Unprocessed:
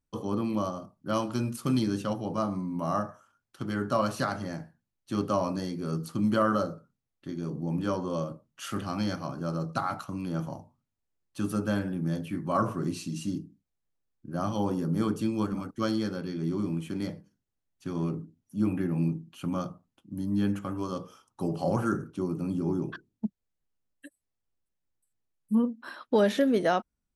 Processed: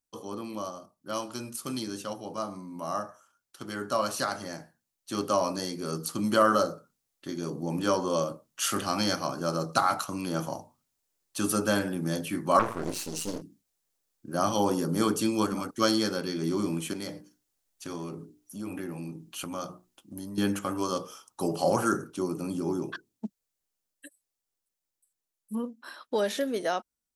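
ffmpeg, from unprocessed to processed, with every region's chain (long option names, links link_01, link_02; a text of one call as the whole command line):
ffmpeg -i in.wav -filter_complex "[0:a]asettb=1/sr,asplit=3[link_01][link_02][link_03];[link_01]atrim=end=12.594[link_04];[link_02]atrim=start=12.59:end=13.42,asetpts=PTS-STARTPTS,afade=type=in:duration=0.004:curve=qsin,afade=type=out:start_time=0.826:duration=0.004:curve=qsin,aeval=exprs='max(val(0),0)':channel_layout=same,adynamicequalizer=threshold=0.00316:dfrequency=3000:dqfactor=0.7:tfrequency=3000:tqfactor=0.7:attack=5:release=100:ratio=0.375:range=3.5:mode=cutabove:tftype=highshelf[link_05];[link_03]atrim=start=13.416[link_06];[link_04][link_05]acrossfade=duration=0.004:curve1=hsin:curve2=qsin[link_07];[link_07][link_06]acrossfade=duration=0.004:curve1=qsin:curve2=hsin,asettb=1/sr,asplit=3[link_08][link_09][link_10];[link_08]atrim=end=16.934[link_11];[link_09]atrim=start=16.93:end=20.38,asetpts=PTS-STARTPTS,afade=type=in:duration=0.004:curve=qsin,afade=type=out:start_time=3.446:duration=0.004:curve=qsin,bandreject=frequency=60:width_type=h:width=6,bandreject=frequency=120:width_type=h:width=6,bandreject=frequency=180:width_type=h:width=6,bandreject=frequency=240:width_type=h:width=6,bandreject=frequency=300:width_type=h:width=6,bandreject=frequency=360:width_type=h:width=6,bandreject=frequency=420:width_type=h:width=6,acompressor=threshold=-36dB:ratio=3:attack=3.2:release=140:knee=1:detection=peak,asubboost=boost=2.5:cutoff=74[link_12];[link_10]atrim=start=20.376[link_13];[link_11][link_12]acrossfade=duration=0.004:curve1=hsin:curve2=qsin[link_14];[link_14][link_13]acrossfade=duration=0.004:curve1=qsin:curve2=hsin,bass=frequency=250:gain=-11,treble=frequency=4000:gain=9,dynaudnorm=framelen=840:gausssize=13:maxgain=10.5dB,volume=-3.5dB" out.wav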